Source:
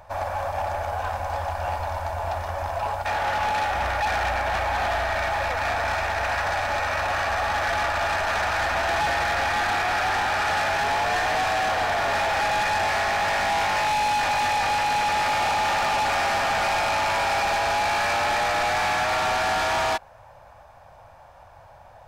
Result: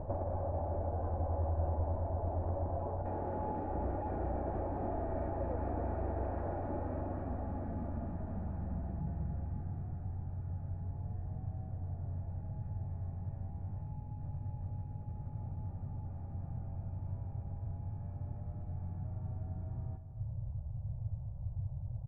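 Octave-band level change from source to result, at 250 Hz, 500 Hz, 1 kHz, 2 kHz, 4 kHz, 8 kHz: −3.0 dB, −14.0 dB, −23.0 dB, −38.5 dB, below −40 dB, below −40 dB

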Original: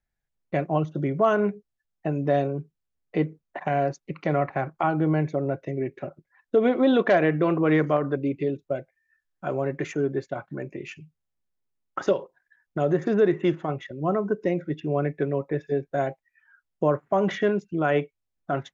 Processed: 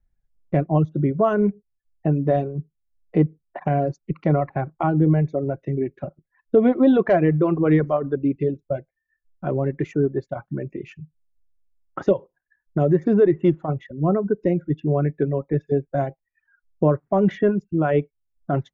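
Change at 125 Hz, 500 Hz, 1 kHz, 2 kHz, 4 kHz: +7.0 dB, +2.5 dB, +0.5 dB, −3.5 dB, can't be measured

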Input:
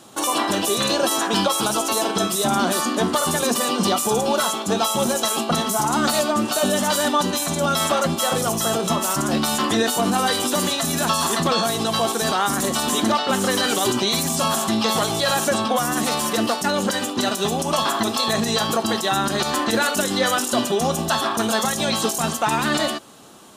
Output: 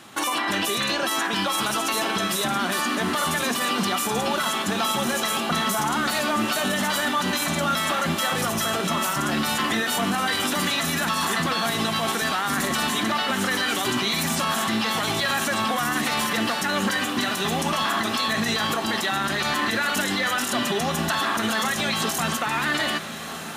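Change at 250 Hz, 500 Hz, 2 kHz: −4.0, −7.0, +2.5 decibels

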